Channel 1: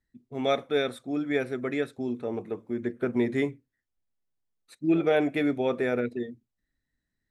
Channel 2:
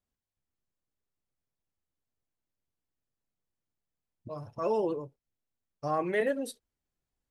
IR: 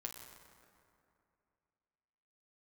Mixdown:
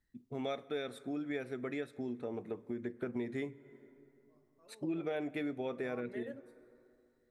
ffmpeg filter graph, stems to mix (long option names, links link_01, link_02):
-filter_complex "[0:a]volume=-1dB,asplit=3[link_01][link_02][link_03];[link_02]volume=-15dB[link_04];[1:a]volume=-11dB,asplit=2[link_05][link_06];[link_06]volume=-22.5dB[link_07];[link_03]apad=whole_len=322002[link_08];[link_05][link_08]sidechaingate=range=-33dB:threshold=-46dB:ratio=16:detection=peak[link_09];[2:a]atrim=start_sample=2205[link_10];[link_04][link_07]amix=inputs=2:normalize=0[link_11];[link_11][link_10]afir=irnorm=-1:irlink=0[link_12];[link_01][link_09][link_12]amix=inputs=3:normalize=0,acompressor=threshold=-39dB:ratio=3"